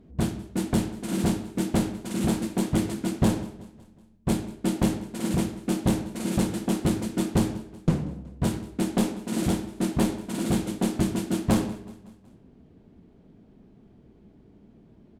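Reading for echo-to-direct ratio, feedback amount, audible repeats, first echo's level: -19.0 dB, 53%, 3, -20.5 dB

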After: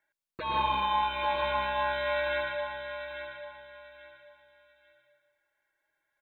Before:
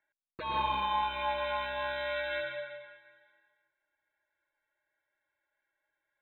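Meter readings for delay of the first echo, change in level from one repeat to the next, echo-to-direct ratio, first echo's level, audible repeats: 841 ms, -11.5 dB, -8.5 dB, -9.0 dB, 3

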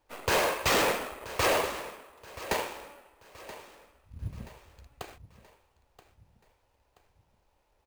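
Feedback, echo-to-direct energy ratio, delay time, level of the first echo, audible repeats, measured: 42%, -15.0 dB, 978 ms, -16.0 dB, 3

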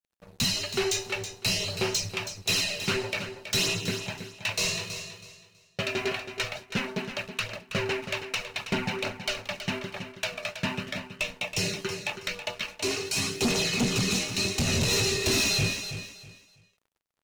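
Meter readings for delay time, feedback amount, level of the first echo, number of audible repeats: 324 ms, 25%, -10.0 dB, 3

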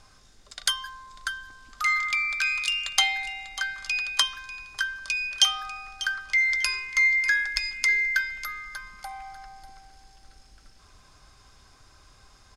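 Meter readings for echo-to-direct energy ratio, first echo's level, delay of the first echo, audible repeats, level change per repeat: -14.5 dB, -14.5 dB, 594 ms, 2, -14.0 dB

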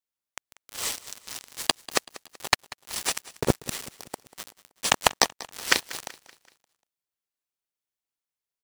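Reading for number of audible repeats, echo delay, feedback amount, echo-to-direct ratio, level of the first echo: 3, 190 ms, 46%, -18.0 dB, -19.0 dB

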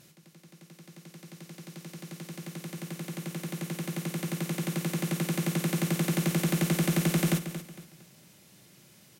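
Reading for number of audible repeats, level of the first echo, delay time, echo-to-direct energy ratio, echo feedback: 3, -11.0 dB, 229 ms, -10.5 dB, 33%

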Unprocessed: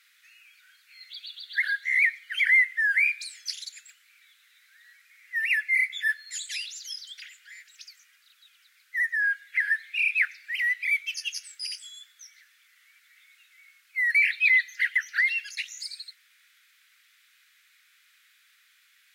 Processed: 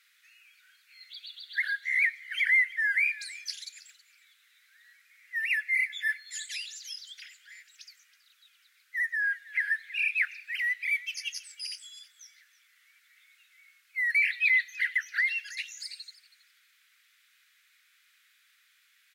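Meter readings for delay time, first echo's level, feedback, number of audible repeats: 323 ms, -19.0 dB, 17%, 2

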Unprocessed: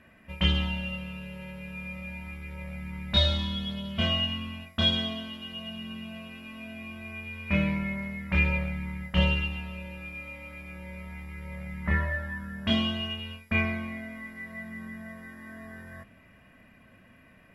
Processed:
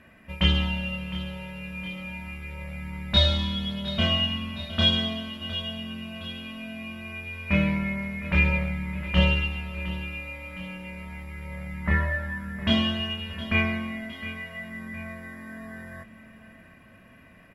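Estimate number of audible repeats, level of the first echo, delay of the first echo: 2, -14.0 dB, 712 ms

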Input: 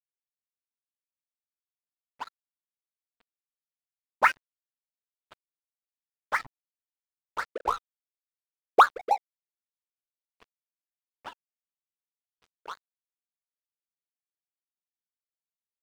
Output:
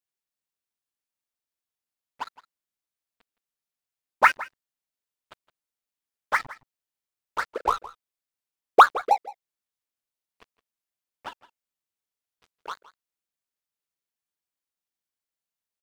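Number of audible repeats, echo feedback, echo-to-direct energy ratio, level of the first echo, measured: 1, no regular repeats, -18.5 dB, -18.5 dB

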